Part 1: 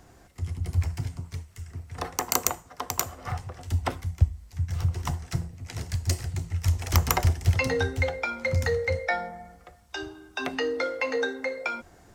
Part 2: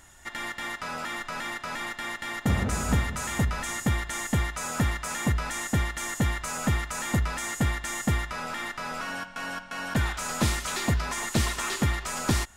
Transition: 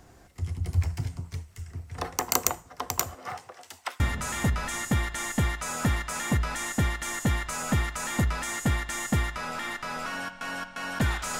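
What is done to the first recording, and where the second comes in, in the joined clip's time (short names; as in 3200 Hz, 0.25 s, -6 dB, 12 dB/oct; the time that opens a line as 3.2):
part 1
3.14–4 HPF 190 Hz -> 1400 Hz
4 switch to part 2 from 2.95 s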